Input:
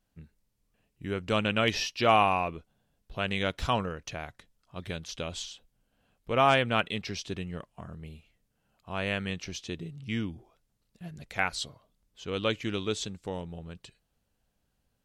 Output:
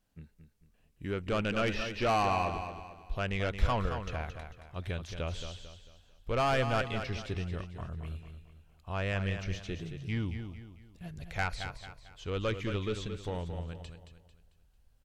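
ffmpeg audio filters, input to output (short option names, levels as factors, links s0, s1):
-filter_complex "[0:a]acrossover=split=2700[s0][s1];[s1]acompressor=threshold=0.00355:ratio=4:attack=1:release=60[s2];[s0][s2]amix=inputs=2:normalize=0,asoftclip=type=tanh:threshold=0.0708,asubboost=boost=5.5:cutoff=78,asplit=2[s3][s4];[s4]aecho=0:1:223|446|669|892:0.376|0.143|0.0543|0.0206[s5];[s3][s5]amix=inputs=2:normalize=0"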